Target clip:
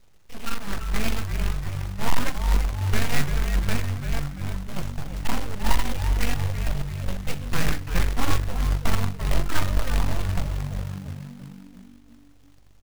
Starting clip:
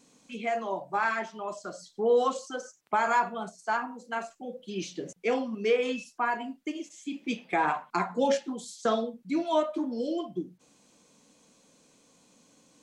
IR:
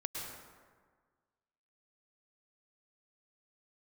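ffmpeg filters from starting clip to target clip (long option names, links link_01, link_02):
-filter_complex "[0:a]aresample=16000,aeval=exprs='abs(val(0))':channel_layout=same,aresample=44100,bass=frequency=250:gain=14,treble=frequency=4000:gain=-9,asplit=7[link_01][link_02][link_03][link_04][link_05][link_06][link_07];[link_02]adelay=340,afreqshift=-48,volume=-6.5dB[link_08];[link_03]adelay=680,afreqshift=-96,volume=-12.3dB[link_09];[link_04]adelay=1020,afreqshift=-144,volume=-18.2dB[link_10];[link_05]adelay=1360,afreqshift=-192,volume=-24dB[link_11];[link_06]adelay=1700,afreqshift=-240,volume=-29.9dB[link_12];[link_07]adelay=2040,afreqshift=-288,volume=-35.7dB[link_13];[link_01][link_08][link_09][link_10][link_11][link_12][link_13]amix=inputs=7:normalize=0,acrusher=bits=3:mode=log:mix=0:aa=0.000001,volume=-3.5dB"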